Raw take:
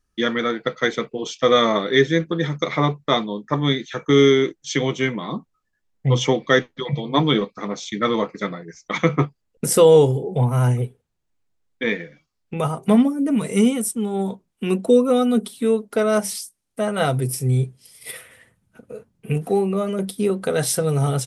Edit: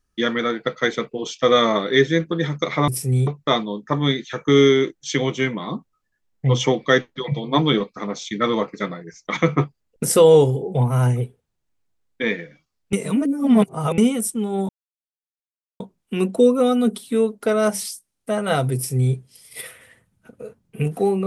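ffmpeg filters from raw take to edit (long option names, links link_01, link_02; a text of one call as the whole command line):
ffmpeg -i in.wav -filter_complex "[0:a]asplit=6[link_01][link_02][link_03][link_04][link_05][link_06];[link_01]atrim=end=2.882[link_07];[link_02]atrim=start=17.248:end=17.642[link_08];[link_03]atrim=start=2.878:end=12.542[link_09];[link_04]atrim=start=12.538:end=13.592,asetpts=PTS-STARTPTS,areverse[link_10];[link_05]atrim=start=13.588:end=14.3,asetpts=PTS-STARTPTS,afade=type=out:start_time=0.708:duration=0.004:curve=hsin,apad=pad_dur=1.11[link_11];[link_06]atrim=start=14.3,asetpts=PTS-STARTPTS,afade=type=in:duration=0.004:curve=hsin[link_12];[link_07][link_08]acrossfade=duration=0.004:curve1=hsin:curve2=hsin[link_13];[link_13][link_09]acrossfade=duration=0.004:curve1=hsin:curve2=hsin[link_14];[link_14][link_10]acrossfade=duration=0.004:curve1=hsin:curve2=hsin[link_15];[link_11][link_12]concat=n=2:v=0:a=1[link_16];[link_15][link_16]acrossfade=duration=0.004:curve1=hsin:curve2=hsin" out.wav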